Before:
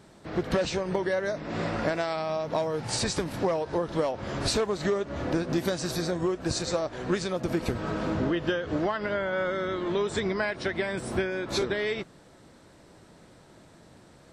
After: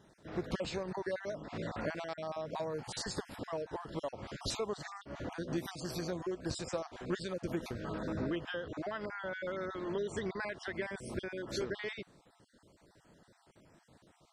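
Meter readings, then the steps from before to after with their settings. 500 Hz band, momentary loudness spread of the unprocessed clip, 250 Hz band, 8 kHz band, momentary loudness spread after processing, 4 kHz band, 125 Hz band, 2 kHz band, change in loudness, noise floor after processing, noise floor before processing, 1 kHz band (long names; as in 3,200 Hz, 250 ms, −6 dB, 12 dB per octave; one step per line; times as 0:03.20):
−10.5 dB, 3 LU, −10.0 dB, −11.0 dB, 4 LU, −10.5 dB, −10.0 dB, −10.0 dB, −10.5 dB, −69 dBFS, −54 dBFS, −10.5 dB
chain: time-frequency cells dropped at random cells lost 32%
level −8.5 dB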